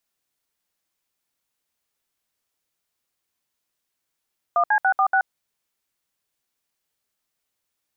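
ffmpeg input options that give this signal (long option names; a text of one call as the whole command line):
ffmpeg -f lavfi -i "aevalsrc='0.126*clip(min(mod(t,0.143),0.078-mod(t,0.143))/0.002,0,1)*(eq(floor(t/0.143),0)*(sin(2*PI*697*mod(t,0.143))+sin(2*PI*1209*mod(t,0.143)))+eq(floor(t/0.143),1)*(sin(2*PI*852*mod(t,0.143))+sin(2*PI*1633*mod(t,0.143)))+eq(floor(t/0.143),2)*(sin(2*PI*770*mod(t,0.143))+sin(2*PI*1477*mod(t,0.143)))+eq(floor(t/0.143),3)*(sin(2*PI*770*mod(t,0.143))+sin(2*PI*1209*mod(t,0.143)))+eq(floor(t/0.143),4)*(sin(2*PI*770*mod(t,0.143))+sin(2*PI*1477*mod(t,0.143))))':duration=0.715:sample_rate=44100" out.wav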